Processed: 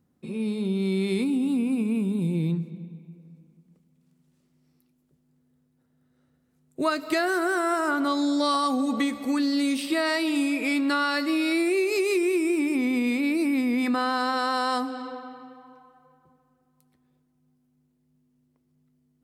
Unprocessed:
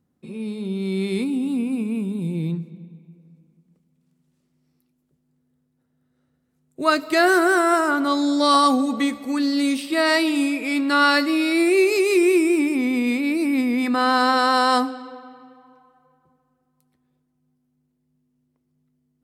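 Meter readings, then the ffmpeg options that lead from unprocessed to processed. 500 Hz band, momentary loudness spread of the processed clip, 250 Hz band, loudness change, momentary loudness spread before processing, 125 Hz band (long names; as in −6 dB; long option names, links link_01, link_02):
−6.0 dB, 6 LU, −3.5 dB, −5.0 dB, 11 LU, can't be measured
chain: -af "acompressor=threshold=-23dB:ratio=6,volume=1.5dB"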